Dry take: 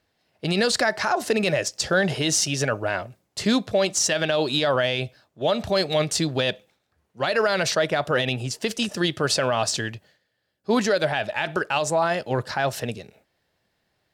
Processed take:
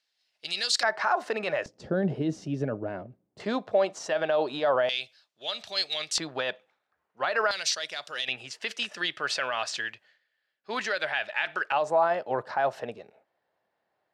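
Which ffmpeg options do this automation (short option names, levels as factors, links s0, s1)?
-af "asetnsamples=n=441:p=0,asendcmd='0.83 bandpass f 1100;1.66 bandpass f 250;3.4 bandpass f 790;4.89 bandpass f 4100;6.18 bandpass f 1200;7.51 bandpass f 5000;8.28 bandpass f 2000;11.72 bandpass f 810',bandpass=f=4700:t=q:w=1.1:csg=0"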